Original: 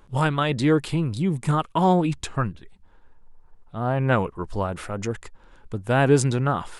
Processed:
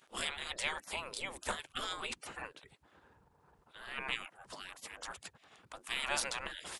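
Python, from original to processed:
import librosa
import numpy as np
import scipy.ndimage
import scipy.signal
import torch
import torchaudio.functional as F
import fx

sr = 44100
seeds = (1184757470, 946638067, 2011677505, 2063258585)

y = fx.spec_gate(x, sr, threshold_db=-25, keep='weak')
y = y * librosa.db_to_amplitude(1.5)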